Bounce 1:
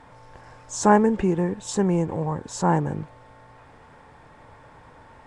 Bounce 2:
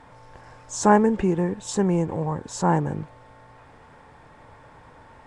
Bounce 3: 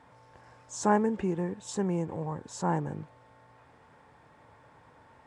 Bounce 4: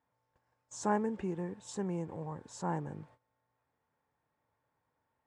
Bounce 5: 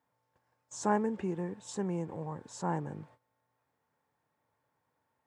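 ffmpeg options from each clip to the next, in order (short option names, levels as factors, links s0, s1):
-af anull
-af "highpass=74,volume=0.398"
-af "agate=range=0.126:threshold=0.00282:ratio=16:detection=peak,volume=0.473"
-af "highpass=90,volume=1.26"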